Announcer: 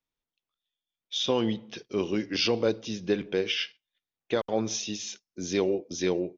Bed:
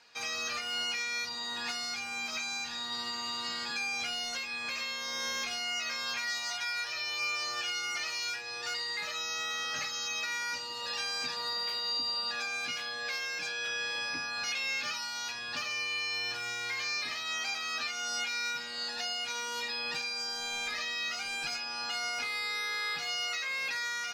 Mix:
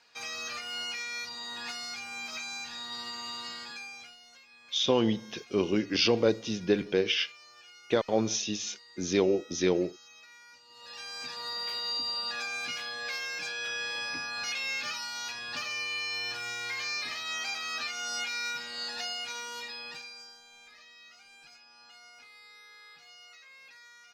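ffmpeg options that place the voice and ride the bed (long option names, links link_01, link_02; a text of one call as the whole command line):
ffmpeg -i stem1.wav -i stem2.wav -filter_complex "[0:a]adelay=3600,volume=1dB[link_01];[1:a]volume=16.5dB,afade=type=out:start_time=3.34:duration=0.83:silence=0.149624,afade=type=in:start_time=10.64:duration=1.13:silence=0.112202,afade=type=out:start_time=18.99:duration=1.44:silence=0.112202[link_02];[link_01][link_02]amix=inputs=2:normalize=0" out.wav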